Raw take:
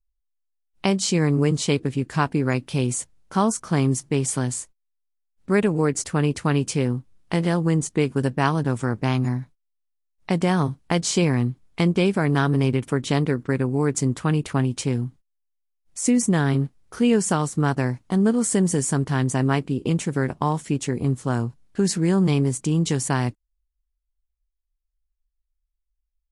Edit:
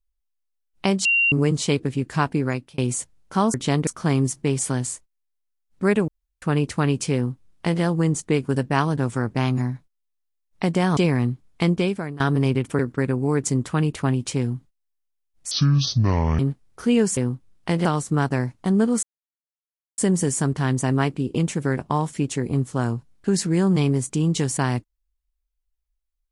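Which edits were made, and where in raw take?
1.05–1.32 s: bleep 2.76 kHz -15.5 dBFS
2.29–2.78 s: fade out equal-power
5.75–6.09 s: room tone
6.81–7.49 s: copy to 17.31 s
10.64–11.15 s: delete
11.89–12.38 s: fade out, to -20 dB
12.97–13.30 s: move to 3.54 s
16.02–16.53 s: speed 58%
18.49 s: insert silence 0.95 s

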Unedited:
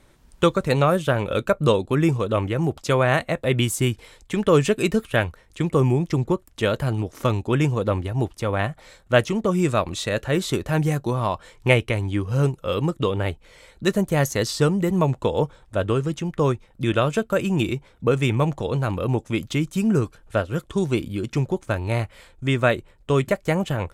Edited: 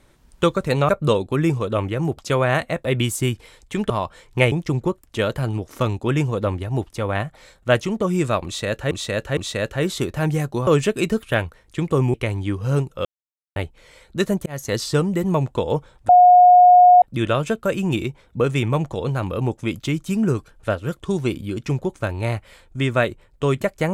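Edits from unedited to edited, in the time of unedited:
0.89–1.48 s: delete
4.49–5.96 s: swap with 11.19–11.81 s
9.89–10.35 s: loop, 3 plays
12.72–13.23 s: mute
14.13–14.41 s: fade in
15.76–16.69 s: bleep 720 Hz -6.5 dBFS

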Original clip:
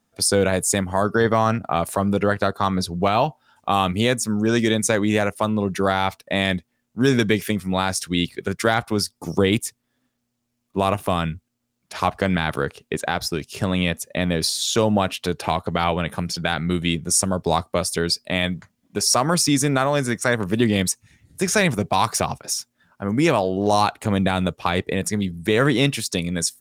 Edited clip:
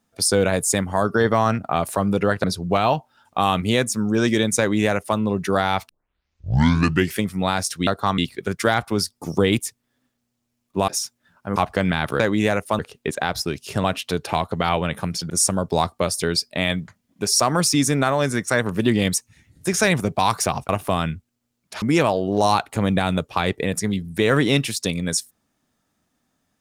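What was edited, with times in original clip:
2.44–2.75 s: move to 8.18 s
4.90–5.49 s: copy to 12.65 s
6.20 s: tape start 1.30 s
10.88–12.01 s: swap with 22.43–23.11 s
13.70–14.99 s: delete
16.45–17.04 s: delete

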